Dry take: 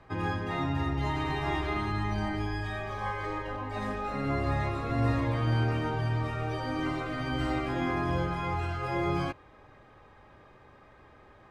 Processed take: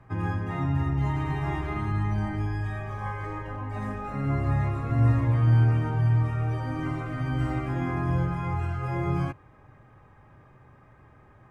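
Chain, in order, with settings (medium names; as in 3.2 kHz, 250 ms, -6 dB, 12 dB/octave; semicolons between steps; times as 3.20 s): ten-band graphic EQ 125 Hz +9 dB, 500 Hz -4 dB, 4 kHz -12 dB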